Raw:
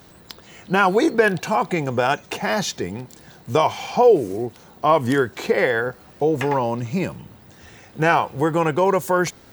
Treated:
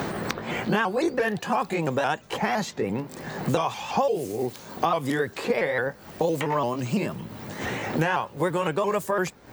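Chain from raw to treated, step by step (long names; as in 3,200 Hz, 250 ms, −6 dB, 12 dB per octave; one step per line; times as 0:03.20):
pitch shifter swept by a sawtooth +2.5 semitones, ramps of 170 ms
multiband upward and downward compressor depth 100%
level −5 dB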